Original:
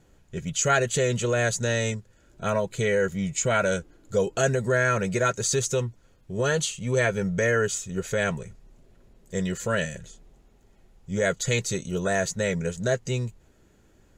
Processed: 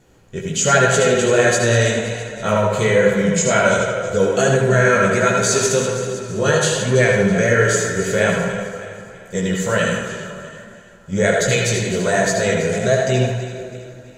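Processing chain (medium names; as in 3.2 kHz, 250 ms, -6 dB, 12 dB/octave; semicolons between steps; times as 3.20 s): backward echo that repeats 164 ms, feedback 66%, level -11 dB; bass shelf 81 Hz -8.5 dB; in parallel at -1 dB: peak limiter -16 dBFS, peak gain reduction 7 dB; on the sum: chorus 1.3 Hz, delay 15 ms, depth 5.9 ms; tape echo 77 ms, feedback 73%, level -5 dB, low-pass 3.5 kHz; on a send at -5 dB: reverberation, pre-delay 70 ms; on the sum: trim +4.5 dB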